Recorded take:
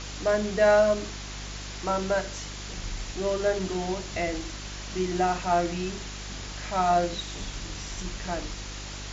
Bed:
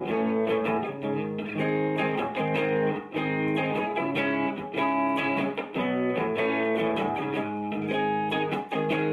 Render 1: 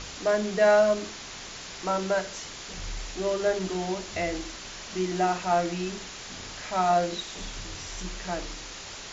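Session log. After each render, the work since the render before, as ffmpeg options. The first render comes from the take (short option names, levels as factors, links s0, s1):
-af "bandreject=f=50:t=h:w=4,bandreject=f=100:t=h:w=4,bandreject=f=150:t=h:w=4,bandreject=f=200:t=h:w=4,bandreject=f=250:t=h:w=4,bandreject=f=300:t=h:w=4,bandreject=f=350:t=h:w=4"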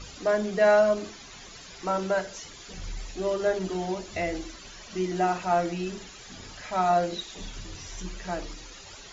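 -af "afftdn=nr=12:nf=-41"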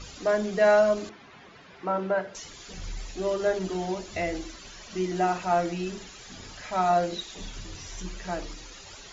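-filter_complex "[0:a]asettb=1/sr,asplit=3[s0][s1][s2];[s0]atrim=end=1.094[s3];[s1]atrim=start=1.09:end=2.35,asetpts=PTS-STARTPTS,afade=t=in:d=0.004:c=qsin,afade=t=out:st=1.256:d=0.004:c=qsin,highpass=110,lowpass=2200[s4];[s2]atrim=start=2.346[s5];[s3][s4]acrossfade=d=0.004:c1=hsin:c2=qsin[s6];[s6][s5]acrossfade=d=0.004:c1=qsin:c2=hsin"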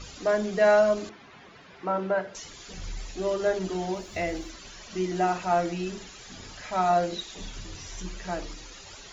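-filter_complex "[0:a]asettb=1/sr,asplit=3[s0][s1][s2];[s0]atrim=end=3.904[s3];[s1]atrim=start=3.9:end=4.5,asetpts=PTS-STARTPTS,afade=t=in:d=0.004:c=qsin,afade=t=out:st=0.596:d=0.004:c=qsin,aeval=exprs='sgn(val(0))*max(abs(val(0))-0.001,0)':c=same[s4];[s2]atrim=start=4.496[s5];[s3][s4]acrossfade=d=0.004:c1=hsin:c2=qsin[s6];[s6][s5]acrossfade=d=0.004:c1=qsin:c2=hsin"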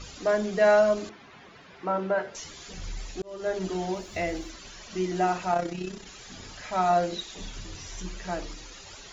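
-filter_complex "[0:a]asettb=1/sr,asplit=3[s0][s1][s2];[s0]atrim=end=2.174[s3];[s1]atrim=start=2.17:end=2.69,asetpts=PTS-STARTPTS,afade=t=in:d=0.004:c=qsin,afade=t=out:st=0.516:d=0.004:c=qsin,asplit=2[s4][s5];[s5]adelay=13,volume=0.562[s6];[s4][s6]amix=inputs=2:normalize=0,atrim=end_sample=22932[s7];[s2]atrim=start=2.686[s8];[s3][s7]acrossfade=d=0.004:c1=hsin:c2=qsin[s9];[s9][s8]acrossfade=d=0.004:c1=qsin:c2=hsin,asplit=3[s10][s11][s12];[s10]afade=t=out:st=5.51:d=0.02[s13];[s11]tremolo=f=32:d=0.621,afade=t=in:st=5.51:d=0.02,afade=t=out:st=6.05:d=0.02[s14];[s12]afade=t=in:st=6.05:d=0.02[s15];[s13][s14][s15]amix=inputs=3:normalize=0,asplit=2[s16][s17];[s16]atrim=end=3.22,asetpts=PTS-STARTPTS,afade=t=out:st=3.216:d=0.004:c=hsin[s18];[s17]atrim=start=3.22,asetpts=PTS-STARTPTS,afade=t=in:d=0.42[s19];[s18][s19]concat=n=2:v=0:a=1"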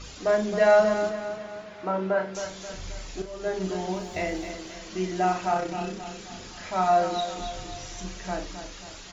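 -filter_complex "[0:a]asplit=2[s0][s1];[s1]adelay=37,volume=0.422[s2];[s0][s2]amix=inputs=2:normalize=0,aecho=1:1:266|532|798|1064|1330:0.335|0.164|0.0804|0.0394|0.0193"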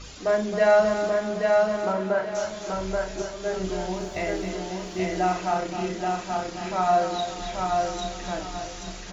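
-af "aecho=1:1:830|1660|2490|3320:0.708|0.191|0.0516|0.0139"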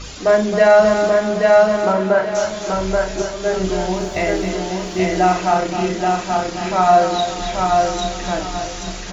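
-af "volume=2.82,alimiter=limit=0.708:level=0:latency=1"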